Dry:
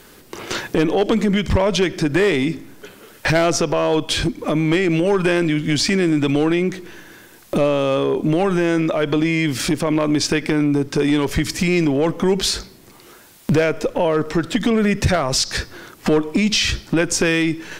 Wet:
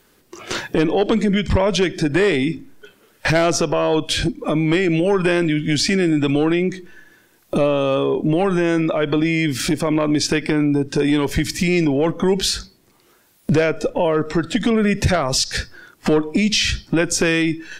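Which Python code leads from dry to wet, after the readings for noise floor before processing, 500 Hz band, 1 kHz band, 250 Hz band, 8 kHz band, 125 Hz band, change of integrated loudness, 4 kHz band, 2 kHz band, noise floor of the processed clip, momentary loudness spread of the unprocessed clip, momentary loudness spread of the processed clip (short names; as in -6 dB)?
-46 dBFS, 0.0 dB, 0.0 dB, 0.0 dB, 0.0 dB, 0.0 dB, 0.0 dB, 0.0 dB, 0.0 dB, -57 dBFS, 5 LU, 4 LU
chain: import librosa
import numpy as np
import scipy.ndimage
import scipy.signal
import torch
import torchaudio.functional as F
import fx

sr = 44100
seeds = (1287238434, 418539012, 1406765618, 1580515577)

y = fx.noise_reduce_blind(x, sr, reduce_db=11)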